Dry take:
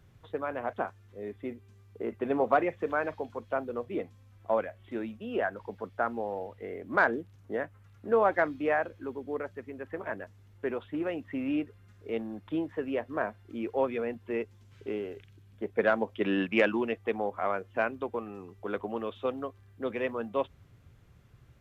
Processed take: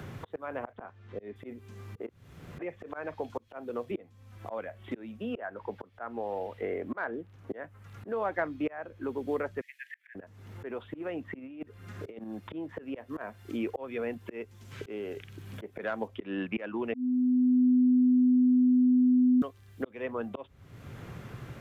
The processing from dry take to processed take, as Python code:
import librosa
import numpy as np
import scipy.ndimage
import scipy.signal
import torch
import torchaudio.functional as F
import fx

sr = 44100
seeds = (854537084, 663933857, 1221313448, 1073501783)

y = fx.lowpass(x, sr, hz=3400.0, slope=12, at=(0.72, 1.36))
y = fx.highpass(y, sr, hz=140.0, slope=12, at=(3.47, 3.91))
y = fx.bass_treble(y, sr, bass_db=-5, treble_db=-8, at=(5.37, 7.63))
y = fx.steep_highpass(y, sr, hz=1700.0, slope=96, at=(9.61, 10.15))
y = fx.over_compress(y, sr, threshold_db=-37.0, ratio=-0.5, at=(11.39, 12.24))
y = fx.high_shelf(y, sr, hz=3300.0, db=10.5, at=(12.94, 16.08))
y = fx.edit(y, sr, fx.room_tone_fill(start_s=2.09, length_s=0.5),
    fx.bleep(start_s=16.94, length_s=2.48, hz=251.0, db=-15.5), tone=tone)
y = fx.auto_swell(y, sr, attack_ms=735.0)
y = fx.band_squash(y, sr, depth_pct=70)
y = y * 10.0 ** (6.0 / 20.0)